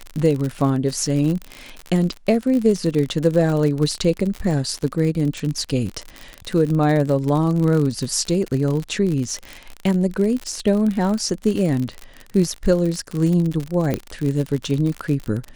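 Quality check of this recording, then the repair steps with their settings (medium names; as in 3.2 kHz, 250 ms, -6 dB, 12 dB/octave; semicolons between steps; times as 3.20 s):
crackle 58 per s -23 dBFS
13.94 s: pop -9 dBFS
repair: de-click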